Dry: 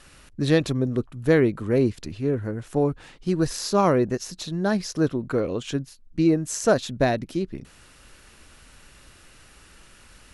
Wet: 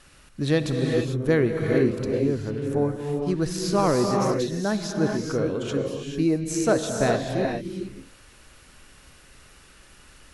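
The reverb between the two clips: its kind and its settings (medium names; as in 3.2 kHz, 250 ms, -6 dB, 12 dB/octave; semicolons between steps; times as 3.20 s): gated-style reverb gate 470 ms rising, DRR 1.5 dB; trim -2.5 dB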